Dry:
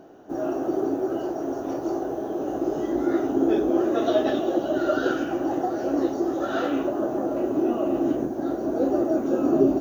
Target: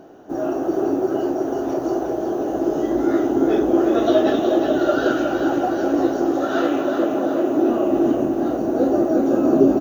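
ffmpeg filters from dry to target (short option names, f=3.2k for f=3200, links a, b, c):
-filter_complex "[0:a]asettb=1/sr,asplit=3[a][b][c];[a]atrim=end=6.304[d];[b]atrim=start=6.3:end=7.7,asetpts=PTS-STARTPTS,afade=t=in:d=0.004:c=qsin,afade=t=out:st=1.396:d=0.004:c=qsin,highpass=150[e];[c]atrim=start=7.696[f];[d][e]acrossfade=d=0.004:c1=hsin:c2=qsin[g];[g][f]acrossfade=d=0.004:c1=qsin:c2=hsin,aecho=1:1:365|730|1095|1460|1825|2190|2555:0.501|0.281|0.157|0.088|0.0493|0.0276|0.0155,volume=4dB"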